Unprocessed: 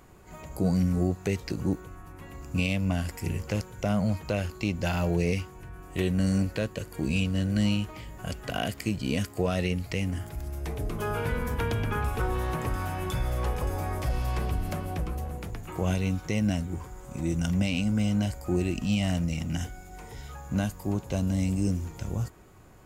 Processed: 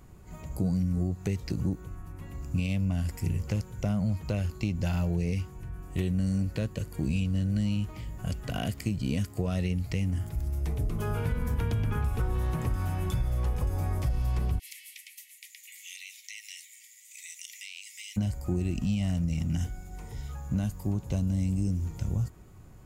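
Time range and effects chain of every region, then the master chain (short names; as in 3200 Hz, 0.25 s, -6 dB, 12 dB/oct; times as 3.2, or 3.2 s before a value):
14.58–18.16 spectral limiter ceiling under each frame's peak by 16 dB + Chebyshev high-pass 1900 Hz, order 8 + compressor 3:1, threshold -37 dBFS
whole clip: tone controls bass +10 dB, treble +3 dB; notch 1600 Hz, Q 28; compressor, threshold -19 dBFS; gain -5 dB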